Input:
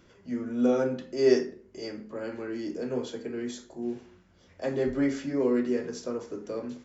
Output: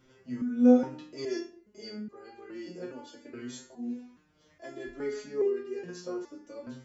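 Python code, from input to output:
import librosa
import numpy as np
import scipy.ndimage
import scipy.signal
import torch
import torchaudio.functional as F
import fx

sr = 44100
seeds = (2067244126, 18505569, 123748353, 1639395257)

y = fx.resonator_held(x, sr, hz=2.4, low_hz=130.0, high_hz=400.0)
y = y * 10.0 ** (8.0 / 20.0)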